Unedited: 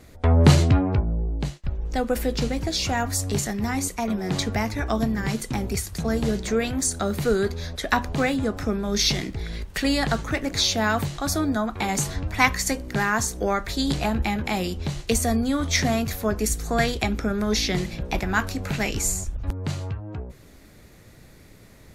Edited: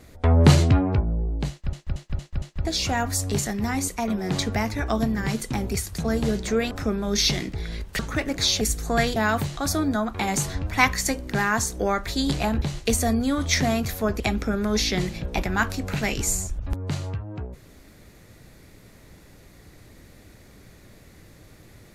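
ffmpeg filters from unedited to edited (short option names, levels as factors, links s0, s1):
-filter_complex "[0:a]asplit=12[s0][s1][s2][s3][s4][s5][s6][s7][s8][s9][s10][s11];[s0]atrim=end=1.732[s12];[s1]atrim=start=1.498:end=1.732[s13];[s2]atrim=start=1.498:end=1.732[s14];[s3]atrim=start=1.498:end=1.732[s15];[s4]atrim=start=1.498:end=1.732[s16];[s5]atrim=start=2.648:end=6.712[s17];[s6]atrim=start=8.518:end=9.802[s18];[s7]atrim=start=10.148:end=10.772[s19];[s8]atrim=start=16.418:end=16.972[s20];[s9]atrim=start=10.768:end=14.232[s21];[s10]atrim=start=14.838:end=16.422[s22];[s11]atrim=start=16.968[s23];[s12][s13]acrossfade=d=0.004:c1=hsin:c2=hsin[s24];[s24][s14]acrossfade=d=0.004:c1=hsin:c2=hsin[s25];[s25][s15]acrossfade=d=0.004:c1=hsin:c2=hsin[s26];[s26][s16]acrossfade=d=0.004:c1=hsin:c2=hsin[s27];[s27][s17]acrossfade=d=0.004:c1=hsin:c2=hsin[s28];[s28][s18]acrossfade=d=0.004:c1=hsin:c2=hsin[s29];[s29][s19]acrossfade=d=0.004:c1=hsin:c2=hsin[s30];[s30][s20]acrossfade=d=0.004:c1=hsin:c2=hsin[s31];[s31][s21]acrossfade=d=0.004:c1=hsin:c2=hsin[s32];[s32][s22]acrossfade=d=0.004:c1=hsin:c2=hsin[s33];[s33][s23]acrossfade=d=0.004:c1=hsin:c2=hsin"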